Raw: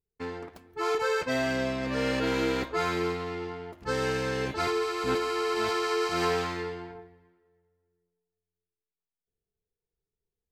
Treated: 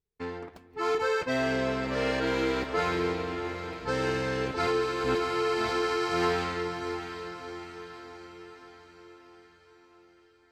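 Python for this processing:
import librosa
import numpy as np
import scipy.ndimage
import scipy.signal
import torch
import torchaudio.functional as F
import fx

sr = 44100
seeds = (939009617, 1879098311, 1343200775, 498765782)

y = fx.high_shelf(x, sr, hz=8200.0, db=-9.5)
y = fx.echo_diffused(y, sr, ms=690, feedback_pct=53, wet_db=-9)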